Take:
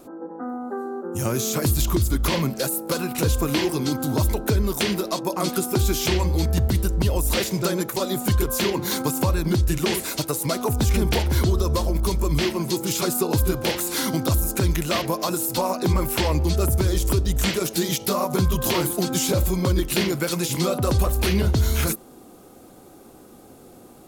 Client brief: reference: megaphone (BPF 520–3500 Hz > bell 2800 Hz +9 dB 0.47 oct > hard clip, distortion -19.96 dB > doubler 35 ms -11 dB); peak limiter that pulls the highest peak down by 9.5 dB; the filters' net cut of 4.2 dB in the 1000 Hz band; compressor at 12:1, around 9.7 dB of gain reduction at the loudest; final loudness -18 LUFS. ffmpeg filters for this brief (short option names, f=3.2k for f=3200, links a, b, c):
-filter_complex "[0:a]equalizer=f=1k:t=o:g=-5,acompressor=threshold=-26dB:ratio=12,alimiter=limit=-23.5dB:level=0:latency=1,highpass=520,lowpass=3.5k,equalizer=f=2.8k:t=o:w=0.47:g=9,asoftclip=type=hard:threshold=-29.5dB,asplit=2[a][b];[b]adelay=35,volume=-11dB[c];[a][c]amix=inputs=2:normalize=0,volume=20.5dB"